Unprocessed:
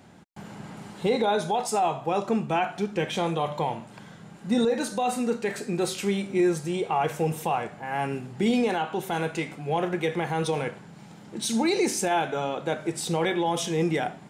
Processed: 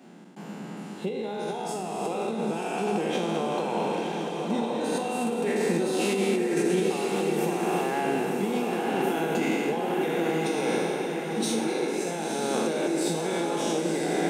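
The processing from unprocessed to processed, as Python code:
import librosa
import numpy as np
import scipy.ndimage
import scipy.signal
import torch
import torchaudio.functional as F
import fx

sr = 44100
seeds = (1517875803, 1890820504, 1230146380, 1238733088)

p1 = fx.spec_trails(x, sr, decay_s=2.27)
p2 = fx.hum_notches(p1, sr, base_hz=50, count=8)
p3 = fx.over_compress(p2, sr, threshold_db=-26.0, ratio=-1.0)
p4 = scipy.signal.sosfilt(scipy.signal.butter(6, 160.0, 'highpass', fs=sr, output='sos'), p3)
p5 = fx.small_body(p4, sr, hz=(220.0, 350.0, 2700.0), ring_ms=20, db=7)
p6 = p5 + fx.echo_diffused(p5, sr, ms=1005, feedback_pct=49, wet_db=-3.5, dry=0)
y = p6 * 10.0 ** (-7.0 / 20.0)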